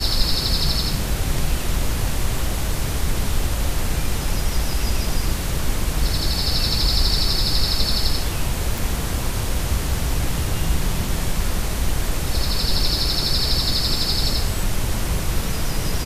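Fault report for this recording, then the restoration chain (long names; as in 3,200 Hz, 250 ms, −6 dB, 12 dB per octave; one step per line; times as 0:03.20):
0:08.78: click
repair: click removal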